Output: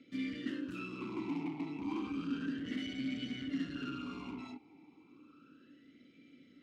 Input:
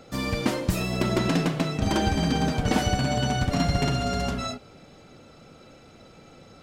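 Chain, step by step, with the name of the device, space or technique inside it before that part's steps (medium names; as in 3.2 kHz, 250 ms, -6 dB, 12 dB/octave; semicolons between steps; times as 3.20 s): talk box (valve stage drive 29 dB, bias 0.6; talking filter i-u 0.32 Hz); trim +4 dB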